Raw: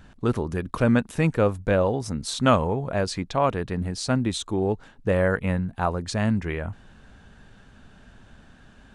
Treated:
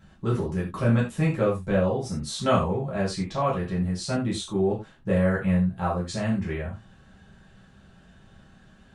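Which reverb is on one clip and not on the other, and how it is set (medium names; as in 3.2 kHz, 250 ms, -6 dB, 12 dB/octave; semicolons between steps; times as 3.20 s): gated-style reverb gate 120 ms falling, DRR -6 dB; trim -10 dB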